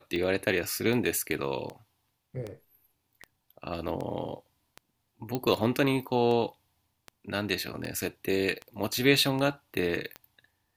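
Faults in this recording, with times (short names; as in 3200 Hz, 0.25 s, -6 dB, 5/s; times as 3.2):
tick 78 rpm -23 dBFS
5.35 pop -16 dBFS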